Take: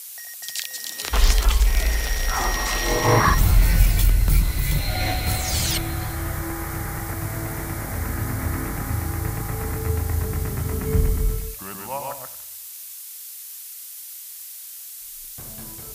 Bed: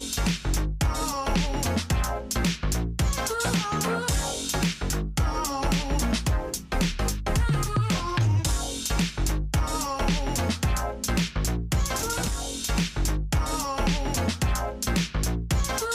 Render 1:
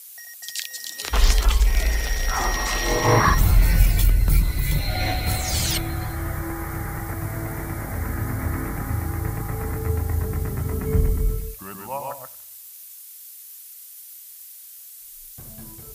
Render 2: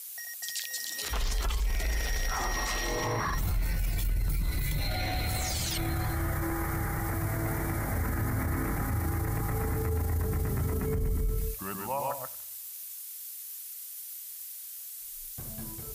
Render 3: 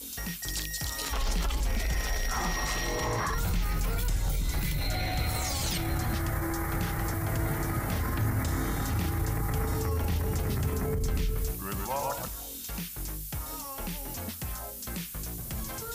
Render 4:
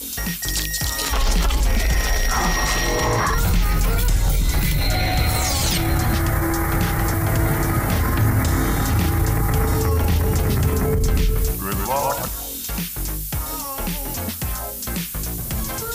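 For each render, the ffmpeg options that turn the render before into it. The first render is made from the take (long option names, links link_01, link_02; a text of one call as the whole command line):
ffmpeg -i in.wav -af "afftdn=noise_reduction=7:noise_floor=-38" out.wav
ffmpeg -i in.wav -af "acompressor=threshold=-19dB:ratio=6,alimiter=limit=-22.5dB:level=0:latency=1:release=18" out.wav
ffmpeg -i in.wav -i bed.wav -filter_complex "[1:a]volume=-12.5dB[link_01];[0:a][link_01]amix=inputs=2:normalize=0" out.wav
ffmpeg -i in.wav -af "volume=10.5dB" out.wav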